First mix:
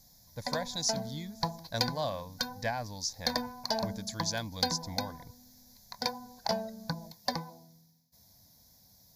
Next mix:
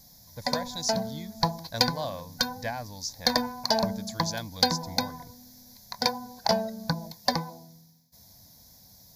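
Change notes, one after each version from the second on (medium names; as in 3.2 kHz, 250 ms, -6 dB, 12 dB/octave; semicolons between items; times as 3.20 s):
background +7.0 dB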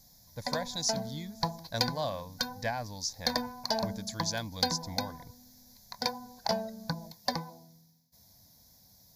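background -6.0 dB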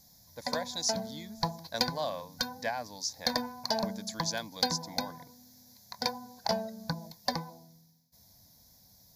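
speech: add high-pass 250 Hz 12 dB/octave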